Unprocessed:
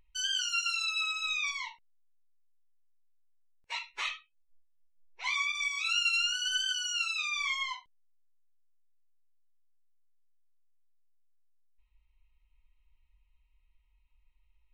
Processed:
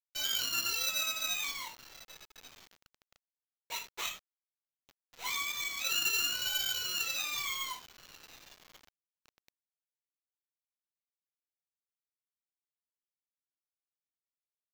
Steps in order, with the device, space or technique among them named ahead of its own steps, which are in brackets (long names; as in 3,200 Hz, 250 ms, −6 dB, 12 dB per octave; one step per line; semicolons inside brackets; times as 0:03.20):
octave-band graphic EQ 125/250/500/2,000/4,000 Hz +11/+9/+8/−5/+6 dB
delay with a high-pass on its return 1,138 ms, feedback 45%, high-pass 3,400 Hz, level −18.5 dB
early 8-bit sampler (sample-rate reduction 9,900 Hz, jitter 0%; bit reduction 8 bits)
level −3.5 dB